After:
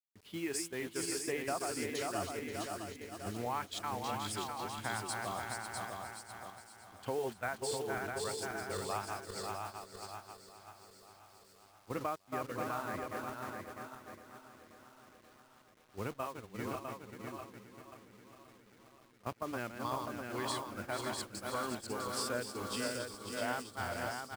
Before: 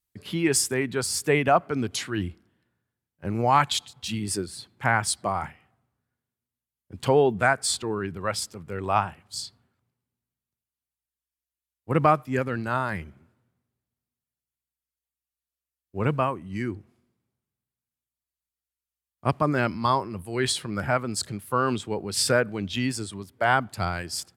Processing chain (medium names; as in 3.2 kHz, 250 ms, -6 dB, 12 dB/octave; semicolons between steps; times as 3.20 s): backward echo that repeats 266 ms, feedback 75%, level -5 dB; peaking EQ 150 Hz -10.5 dB 0.45 oct; compression 2.5:1, threshold -39 dBFS, peak gain reduction 16.5 dB; word length cut 8-bit, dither none; gate -37 dBFS, range -13 dB; on a send: delay 652 ms -5 dB; on the sum: trim -2.5 dB